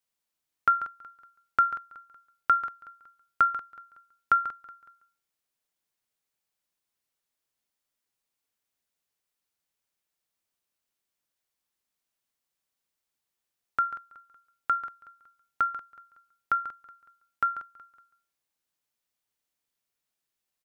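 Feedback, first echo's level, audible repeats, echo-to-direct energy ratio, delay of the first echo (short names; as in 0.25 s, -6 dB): 40%, -17.0 dB, 3, -16.5 dB, 0.186 s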